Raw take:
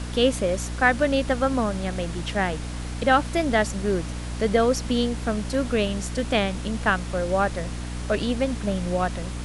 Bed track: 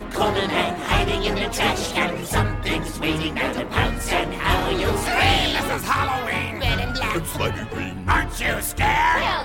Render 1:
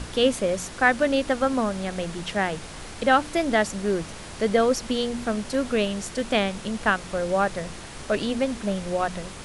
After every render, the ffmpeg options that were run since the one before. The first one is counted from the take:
-af "bandreject=f=60:t=h:w=4,bandreject=f=120:t=h:w=4,bandreject=f=180:t=h:w=4,bandreject=f=240:t=h:w=4,bandreject=f=300:t=h:w=4"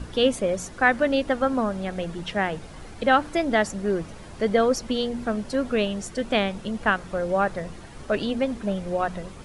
-af "afftdn=nr=10:nf=-39"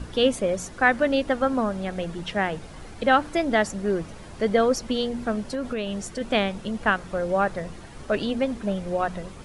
-filter_complex "[0:a]asplit=3[s0][s1][s2];[s0]afade=t=out:st=5.4:d=0.02[s3];[s1]acompressor=threshold=0.0631:ratio=6:attack=3.2:release=140:knee=1:detection=peak,afade=t=in:st=5.4:d=0.02,afade=t=out:st=6.2:d=0.02[s4];[s2]afade=t=in:st=6.2:d=0.02[s5];[s3][s4][s5]amix=inputs=3:normalize=0"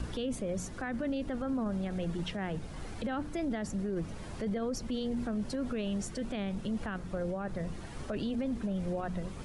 -filter_complex "[0:a]acrossover=split=320[s0][s1];[s1]acompressor=threshold=0.00355:ratio=1.5[s2];[s0][s2]amix=inputs=2:normalize=0,alimiter=level_in=1.41:limit=0.0631:level=0:latency=1:release=21,volume=0.708"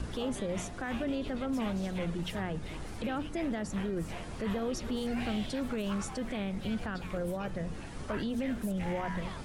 -filter_complex "[1:a]volume=0.0668[s0];[0:a][s0]amix=inputs=2:normalize=0"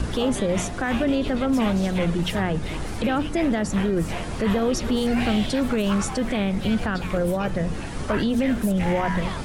-af "volume=3.76"

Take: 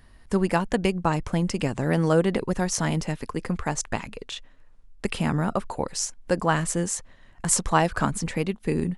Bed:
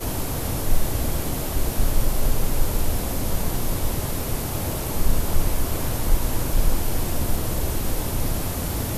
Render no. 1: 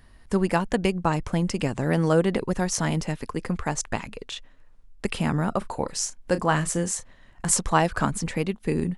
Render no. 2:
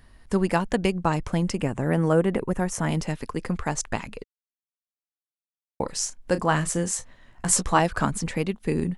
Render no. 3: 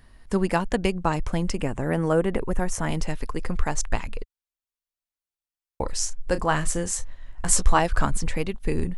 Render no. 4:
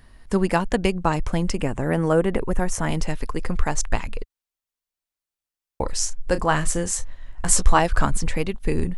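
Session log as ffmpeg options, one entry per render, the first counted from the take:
-filter_complex "[0:a]asettb=1/sr,asplit=3[s0][s1][s2];[s0]atrim=end=5.584[s3];[s1]atrim=start=5.58:end=7.51,asetpts=PTS-STARTPTS,afade=t=in:d=0.004:c=qsin,afade=t=out:st=1.926:d=0.004:c=qsin,asplit=2[s4][s5];[s5]adelay=33,volume=0.237[s6];[s4][s6]amix=inputs=2:normalize=0,atrim=end_sample=85113[s7];[s2]atrim=start=7.506[s8];[s3][s7]acrossfade=d=0.004:c1=hsin:c2=qsin[s9];[s9][s8]acrossfade=d=0.004:c1=qsin:c2=hsin"
-filter_complex "[0:a]asettb=1/sr,asplit=3[s0][s1][s2];[s0]atrim=end=1.554[s3];[s1]atrim=start=1.55:end=2.89,asetpts=PTS-STARTPTS,afade=t=in:d=0.004:c=qsin,afade=t=out:st=1.336:d=0.004:c=qsin,equalizer=f=4500:t=o:w=0.94:g=-13.5[s4];[s2]atrim=start=2.886[s5];[s3][s4]acrossfade=d=0.004:c1=hsin:c2=qsin[s6];[s6][s5]acrossfade=d=0.004:c1=qsin:c2=hsin,asettb=1/sr,asplit=3[s7][s8][s9];[s7]atrim=end=6.914[s10];[s8]atrim=start=6.91:end=7.79,asetpts=PTS-STARTPTS,afade=t=in:d=0.004:c=qsin,afade=t=out:st=0.876:d=0.004:c=qsin,asplit=2[s11][s12];[s12]adelay=16,volume=0.447[s13];[s11][s13]amix=inputs=2:normalize=0,atrim=end_sample=38808[s14];[s9]atrim=start=7.786[s15];[s10][s14]acrossfade=d=0.004:c1=hsin:c2=qsin[s16];[s16][s15]acrossfade=d=0.004:c1=qsin:c2=hsin,asplit=3[s17][s18][s19];[s17]atrim=end=4.24,asetpts=PTS-STARTPTS,afade=t=out:st=4.236:d=0.004:c=hsin[s20];[s18]atrim=start=4.24:end=5.8,asetpts=PTS-STARTPTS,volume=0[s21];[s19]atrim=start=5.8,asetpts=PTS-STARTPTS,afade=t=in:d=0.004:c=hsin[s22];[s20][s21][s22]concat=n=3:v=0:a=1"
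-af "asubboost=boost=7.5:cutoff=62"
-af "volume=1.33,alimiter=limit=0.708:level=0:latency=1"

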